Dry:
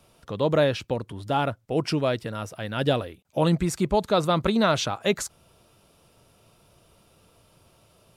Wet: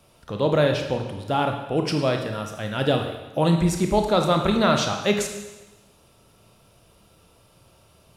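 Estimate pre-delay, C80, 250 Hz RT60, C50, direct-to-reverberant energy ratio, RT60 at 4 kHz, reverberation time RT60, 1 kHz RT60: 25 ms, 8.5 dB, 1.1 s, 5.5 dB, 4.0 dB, 1.1 s, 1.1 s, 1.1 s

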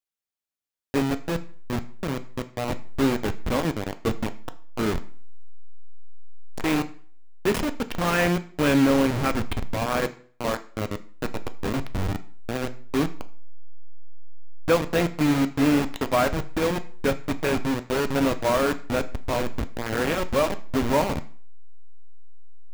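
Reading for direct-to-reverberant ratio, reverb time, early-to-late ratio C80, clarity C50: 9.0 dB, 0.50 s, 20.5 dB, 16.5 dB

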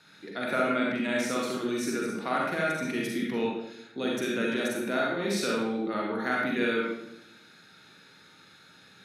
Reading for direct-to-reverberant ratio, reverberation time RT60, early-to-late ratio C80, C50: -3.0 dB, 0.85 s, 3.5 dB, -1.0 dB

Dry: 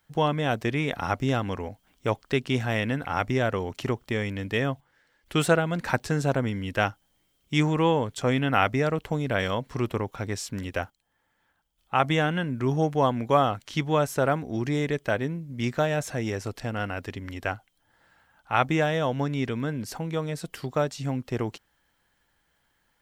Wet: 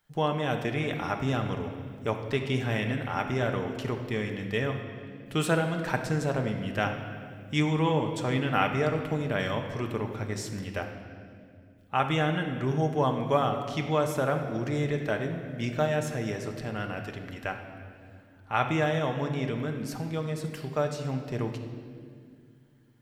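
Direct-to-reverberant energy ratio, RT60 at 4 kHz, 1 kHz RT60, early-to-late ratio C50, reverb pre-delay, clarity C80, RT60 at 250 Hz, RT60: 3.5 dB, 1.7 s, 1.8 s, 6.5 dB, 5 ms, 8.0 dB, 3.5 s, 2.2 s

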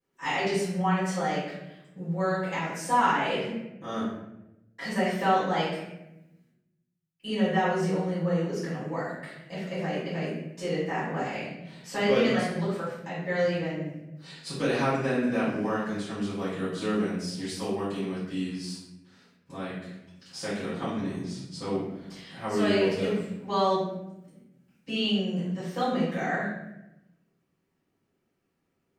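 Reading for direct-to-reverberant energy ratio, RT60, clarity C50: -13.0 dB, 0.90 s, 0.5 dB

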